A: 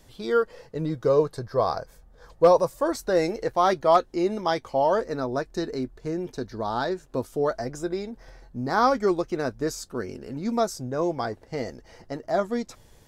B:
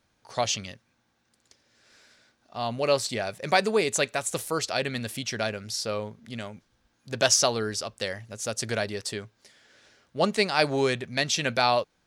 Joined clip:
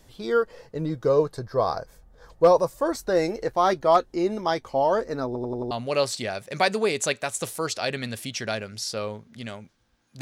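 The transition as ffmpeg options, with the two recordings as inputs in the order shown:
-filter_complex "[0:a]apad=whole_dur=10.21,atrim=end=10.21,asplit=5[s0][s1][s2][s3][s4];[s0]atrim=end=5.352[s5];[s1]atrim=start=5.258:end=5.352[s6];[s2]atrim=start=5.258:end=5.352[s7];[s3]atrim=start=5.258:end=5.352[s8];[s4]atrim=start=5.258:end=5.352[s9];[1:a]atrim=start=2.628:end=7.13[s10];[s5][s6]acrossfade=d=0.004:c1=hsin:c2=hsin[s11];[s11][s7]acrossfade=d=0.004:c1=hsin:c2=hsin[s12];[s12][s8]acrossfade=d=0.004:c1=hsin:c2=hsin[s13];[s13][s9]acrossfade=d=0.004:c1=hsin:c2=hsin[s14];[s14][s10]acrossfade=d=0.004:c1=hsin:c2=hsin"

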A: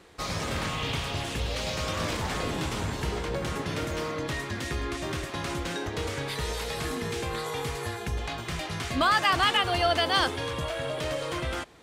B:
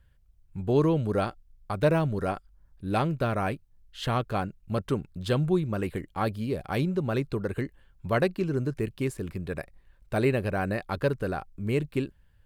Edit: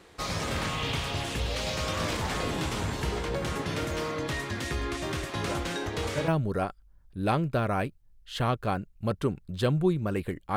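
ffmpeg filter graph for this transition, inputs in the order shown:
-filter_complex "[1:a]asplit=2[s0][s1];[0:a]apad=whole_dur=10.56,atrim=end=10.56,atrim=end=6.282[s2];[s1]atrim=start=1.948:end=6.23[s3];[s0]atrim=start=1.01:end=1.95,asetpts=PTS-STARTPTS,volume=0.316,afade=t=in:d=0.004:c=hsin,afade=t=out:st=0.936:d=0.004:c=hsin,adelay=5340[s4];[s2][s3]acrossfade=d=0.004:c1=hsin:c2=hsin[s5];[s5][s4]amix=inputs=2:normalize=0"

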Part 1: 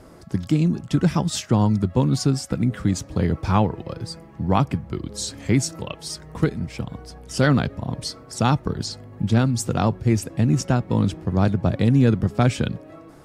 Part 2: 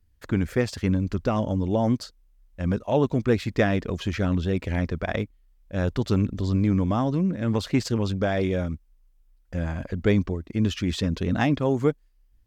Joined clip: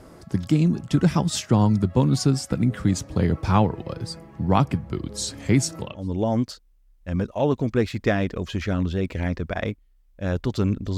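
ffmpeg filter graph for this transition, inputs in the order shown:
-filter_complex "[0:a]apad=whole_dur=10.97,atrim=end=10.97,atrim=end=6.12,asetpts=PTS-STARTPTS[s0];[1:a]atrim=start=1.34:end=6.49,asetpts=PTS-STARTPTS[s1];[s0][s1]acrossfade=d=0.3:c1=qua:c2=qua"

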